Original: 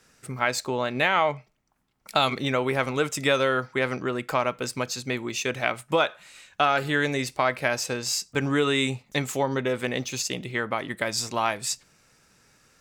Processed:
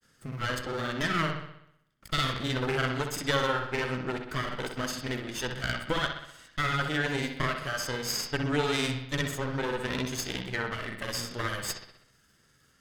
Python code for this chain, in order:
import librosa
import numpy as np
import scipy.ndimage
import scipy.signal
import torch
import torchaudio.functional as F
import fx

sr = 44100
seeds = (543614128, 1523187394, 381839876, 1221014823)

y = fx.lower_of_two(x, sr, delay_ms=0.62)
y = fx.granulator(y, sr, seeds[0], grain_ms=100.0, per_s=20.0, spray_ms=38.0, spread_st=0)
y = fx.echo_bbd(y, sr, ms=63, stages=2048, feedback_pct=56, wet_db=-7)
y = y * 10.0 ** (-2.5 / 20.0)